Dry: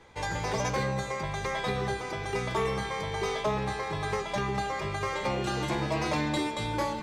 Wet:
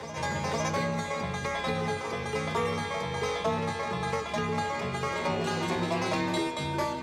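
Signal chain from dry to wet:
backwards echo 507 ms −10 dB
frequency shifter +33 Hz

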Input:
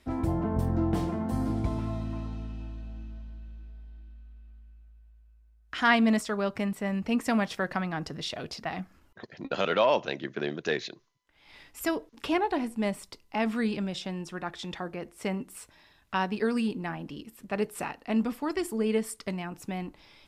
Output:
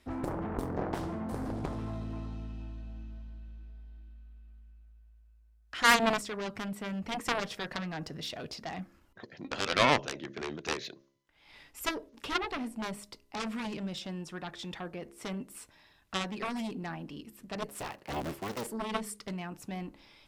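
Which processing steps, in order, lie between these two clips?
0:17.68–0:18.67: sub-harmonics by changed cycles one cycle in 3, inverted
harmonic generator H 7 −12 dB, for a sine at −9 dBFS
hum removal 68.42 Hz, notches 9

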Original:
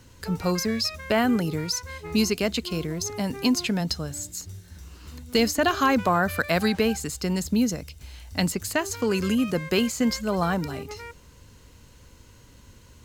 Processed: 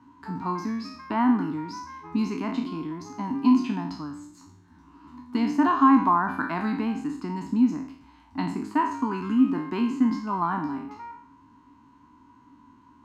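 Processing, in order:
peak hold with a decay on every bin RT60 0.57 s
pair of resonant band-passes 520 Hz, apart 1.8 octaves
level +8.5 dB

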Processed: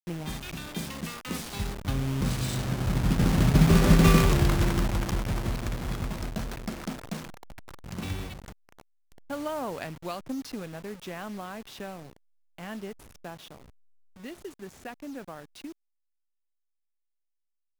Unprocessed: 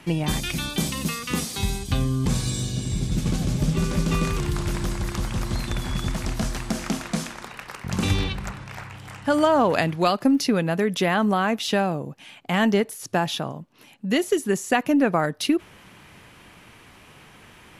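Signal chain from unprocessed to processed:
hold until the input has moved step −26 dBFS
source passing by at 0:03.99, 7 m/s, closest 4.4 metres
level +5 dB

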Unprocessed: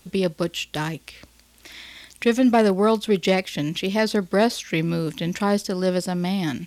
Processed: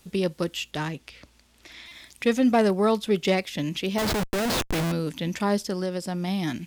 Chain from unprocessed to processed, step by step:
0:00.71–0:01.86: high-shelf EQ 9,700 Hz −12 dB
0:03.98–0:04.92: comparator with hysteresis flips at −29 dBFS
0:05.76–0:06.28: downward compressor, threshold −22 dBFS, peak gain reduction 6 dB
buffer that repeats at 0:01.88, samples 128, times 10
level −3 dB

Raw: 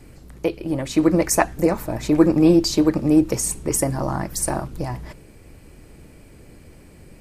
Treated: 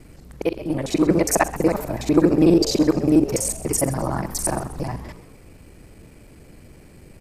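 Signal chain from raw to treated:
reversed piece by piece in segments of 41 ms
echo with shifted repeats 129 ms, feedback 42%, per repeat +110 Hz, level −16 dB

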